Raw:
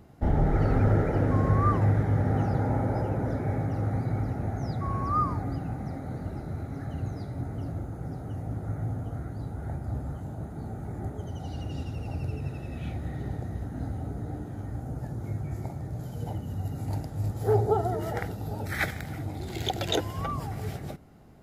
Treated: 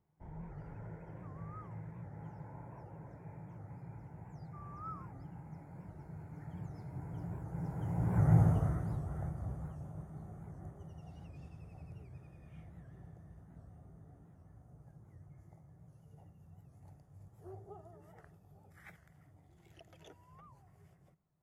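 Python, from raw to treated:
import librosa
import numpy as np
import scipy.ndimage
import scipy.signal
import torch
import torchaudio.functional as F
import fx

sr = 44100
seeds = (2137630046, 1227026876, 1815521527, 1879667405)

y = fx.doppler_pass(x, sr, speed_mps=20, closest_m=4.3, pass_at_s=8.4)
y = fx.graphic_eq_31(y, sr, hz=(160, 250, 1000, 2000, 4000, 8000), db=(10, -8, 8, 3, -11, 3))
y = fx.record_warp(y, sr, rpm=78.0, depth_cents=160.0)
y = y * 10.0 ** (4.5 / 20.0)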